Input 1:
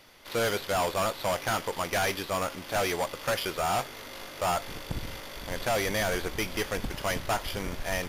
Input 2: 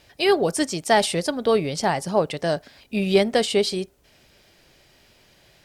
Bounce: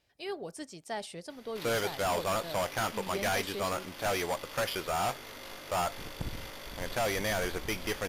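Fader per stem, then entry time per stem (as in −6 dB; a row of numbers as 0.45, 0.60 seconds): −3.0, −19.5 decibels; 1.30, 0.00 seconds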